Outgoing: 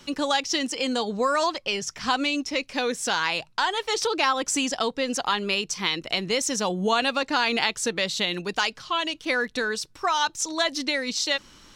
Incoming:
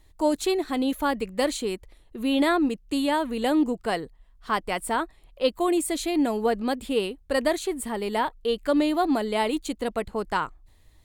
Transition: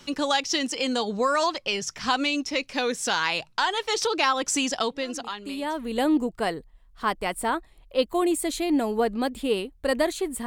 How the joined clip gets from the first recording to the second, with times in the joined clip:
outgoing
5.40 s: go over to incoming from 2.86 s, crossfade 1.20 s quadratic

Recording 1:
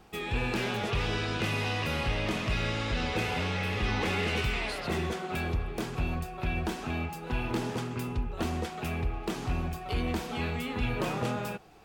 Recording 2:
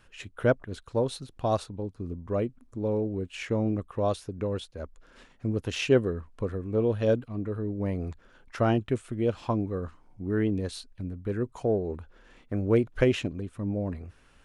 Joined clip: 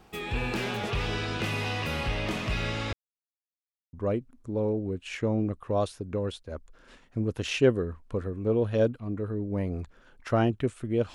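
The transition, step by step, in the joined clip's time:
recording 1
2.93–3.93 s: mute
3.93 s: go over to recording 2 from 2.21 s

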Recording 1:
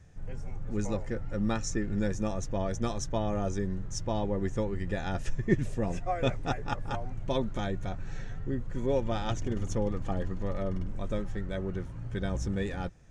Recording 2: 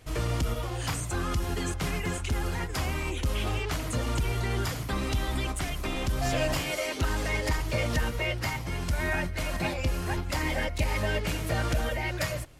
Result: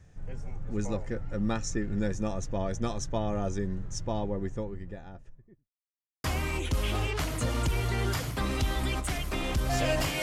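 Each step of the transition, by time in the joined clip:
recording 1
3.85–5.70 s: studio fade out
5.70–6.24 s: mute
6.24 s: go over to recording 2 from 2.76 s

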